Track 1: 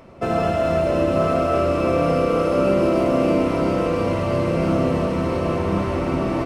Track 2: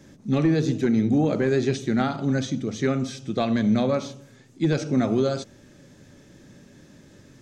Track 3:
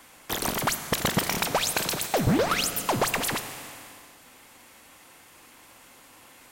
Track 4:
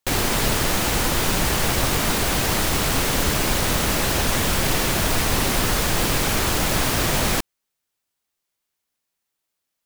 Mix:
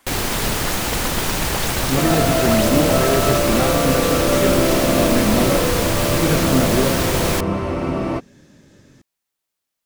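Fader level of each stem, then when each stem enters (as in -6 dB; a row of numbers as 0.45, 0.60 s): 0.0, +1.0, -5.0, -0.5 dB; 1.75, 1.60, 0.00, 0.00 s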